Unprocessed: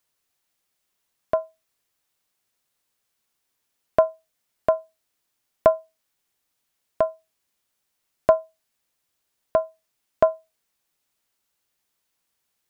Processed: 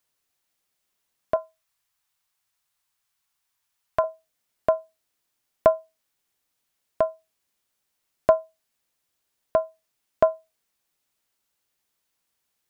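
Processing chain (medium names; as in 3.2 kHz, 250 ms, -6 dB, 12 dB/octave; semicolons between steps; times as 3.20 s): 1.36–4.04 s: graphic EQ 250/500/1000 Hz -10/-8/+3 dB; trim -1 dB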